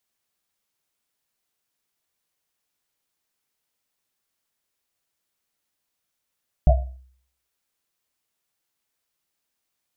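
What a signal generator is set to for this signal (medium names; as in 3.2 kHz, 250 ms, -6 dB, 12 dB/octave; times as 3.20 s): Risset drum, pitch 64 Hz, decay 0.58 s, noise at 660 Hz, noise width 110 Hz, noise 30%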